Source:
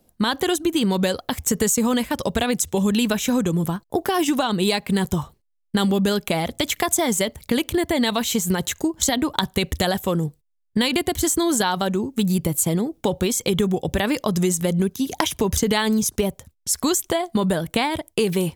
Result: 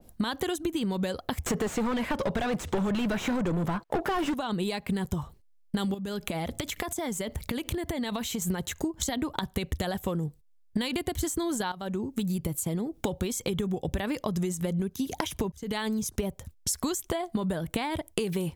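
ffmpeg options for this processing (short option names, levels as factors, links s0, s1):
-filter_complex "[0:a]asettb=1/sr,asplit=3[s0][s1][s2];[s0]atrim=end=1.464[s3];[s1]atrim=start=1.46:end=4.34,asetpts=PTS-STARTPTS,afade=t=in:d=0.004:c=qsin,afade=t=out:st=2.876:d=0.004:c=qsin,asplit=2[s4][s5];[s5]highpass=f=720:p=1,volume=35.5,asoftclip=type=tanh:threshold=0.473[s6];[s4][s6]amix=inputs=2:normalize=0,lowpass=f=1500:p=1,volume=0.501[s7];[s2]atrim=start=4.336[s8];[s3][s7]acrossfade=d=0.004:c1=hsin:c2=qsin[s9];[s9][s8]acrossfade=d=0.004:c1=qsin:c2=hsin,asettb=1/sr,asplit=3[s10][s11][s12];[s10]atrim=end=5.944[s13];[s11]atrim=start=5.94:end=8.42,asetpts=PTS-STARTPTS,afade=t=in:d=0.004:c=qsin,afade=t=out:st=2.476:d=0.004:c=qsin,acompressor=threshold=0.0398:ratio=6:attack=3.2:release=140:knee=1:detection=peak[s14];[s12]atrim=start=8.416[s15];[s13][s14]acrossfade=d=0.004:c1=hsin:c2=qsin[s16];[s16][s15]acrossfade=d=0.004:c1=qsin:c2=hsin,asplit=3[s17][s18][s19];[s17]atrim=end=11.72,asetpts=PTS-STARTPTS,afade=t=out:st=11.716:d=0.004:c=hsin:silence=0.211349[s20];[s18]atrim=start=11.72:end=15.52,asetpts=PTS-STARTPTS,afade=t=in:d=1.3:silence=0.211349,afade=t=out:st=3.796:d=0.004:c=hsin[s21];[s19]atrim=start=15.52,asetpts=PTS-STARTPTS,afade=t=in:d=0.76[s22];[s20][s21][s22]concat=n=3:v=0:a=1,lowshelf=f=85:g=8.5,acompressor=threshold=0.0282:ratio=6,adynamicequalizer=threshold=0.00251:dfrequency=2800:dqfactor=0.7:tfrequency=2800:tqfactor=0.7:attack=5:release=100:ratio=0.375:range=2:mode=cutabove:tftype=highshelf,volume=1.5"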